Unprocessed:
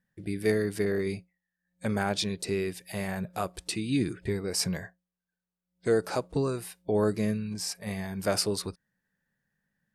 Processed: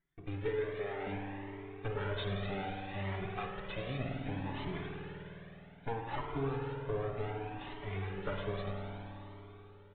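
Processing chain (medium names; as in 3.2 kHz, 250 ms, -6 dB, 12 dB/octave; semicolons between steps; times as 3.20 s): comb filter that takes the minimum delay 7 ms; 0.48–1.07 s: high-pass 340 Hz 24 dB/octave; compression, threshold -29 dBFS, peak gain reduction 8 dB; spring tank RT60 3.7 s, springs 51 ms, chirp 60 ms, DRR 0 dB; resampled via 8 kHz; Shepard-style flanger rising 0.64 Hz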